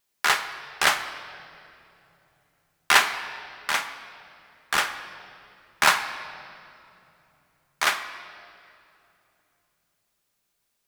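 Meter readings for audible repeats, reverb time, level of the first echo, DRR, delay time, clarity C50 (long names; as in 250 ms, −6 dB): no echo audible, 2.9 s, no echo audible, 7.0 dB, no echo audible, 10.5 dB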